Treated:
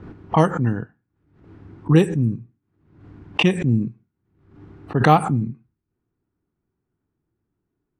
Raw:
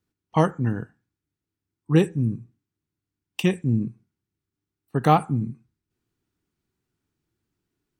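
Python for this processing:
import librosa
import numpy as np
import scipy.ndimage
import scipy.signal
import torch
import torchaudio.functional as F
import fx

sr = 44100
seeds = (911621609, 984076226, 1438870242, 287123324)

y = fx.env_lowpass(x, sr, base_hz=1200.0, full_db=-15.5)
y = fx.pre_swell(y, sr, db_per_s=76.0)
y = y * librosa.db_to_amplitude(3.0)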